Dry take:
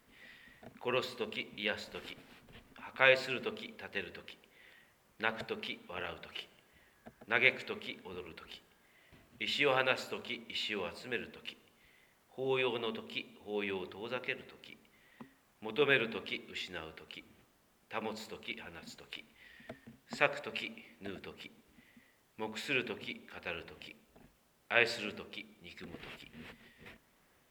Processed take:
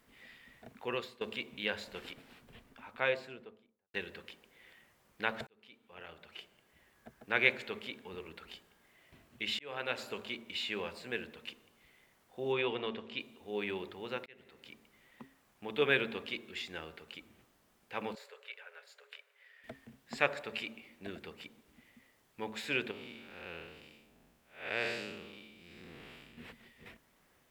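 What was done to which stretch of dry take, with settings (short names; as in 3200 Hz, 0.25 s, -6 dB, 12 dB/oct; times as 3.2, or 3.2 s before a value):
0.8–1.21 fade out, to -15.5 dB
2.45–3.94 studio fade out
5.47–7.08 fade in
9.59–10.12 fade in
12.52–13.2 LPF 4600 Hz
14.26–14.71 fade in
18.15–19.64 rippled Chebyshev high-pass 400 Hz, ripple 9 dB
22.91–26.38 time blur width 0.227 s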